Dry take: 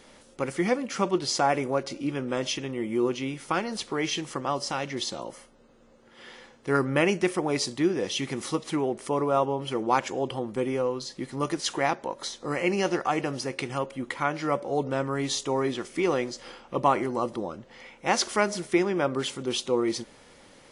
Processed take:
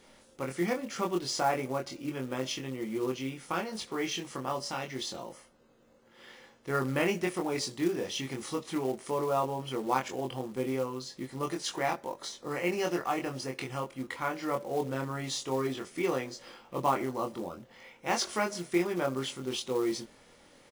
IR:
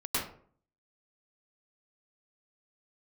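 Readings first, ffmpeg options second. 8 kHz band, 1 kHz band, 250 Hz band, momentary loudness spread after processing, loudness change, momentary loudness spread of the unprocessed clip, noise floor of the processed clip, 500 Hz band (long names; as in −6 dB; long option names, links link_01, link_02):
−5.0 dB, −5.0 dB, −5.0 dB, 10 LU, −5.0 dB, 10 LU, −60 dBFS, −5.5 dB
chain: -filter_complex "[0:a]asplit=2[link_01][link_02];[link_02]adelay=23,volume=-3dB[link_03];[link_01][link_03]amix=inputs=2:normalize=0,acrusher=bits=5:mode=log:mix=0:aa=0.000001,volume=-7dB"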